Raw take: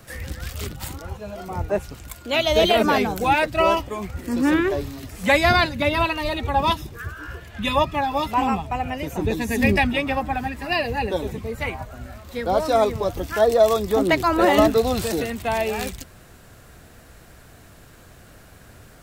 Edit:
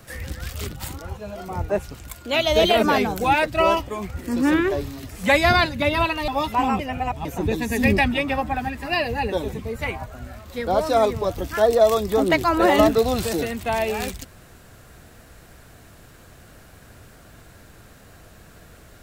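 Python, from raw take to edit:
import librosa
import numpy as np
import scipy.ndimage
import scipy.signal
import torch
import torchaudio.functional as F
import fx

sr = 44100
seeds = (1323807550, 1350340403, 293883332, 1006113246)

y = fx.edit(x, sr, fx.cut(start_s=6.28, length_s=1.79),
    fx.reverse_span(start_s=8.58, length_s=0.46), tone=tone)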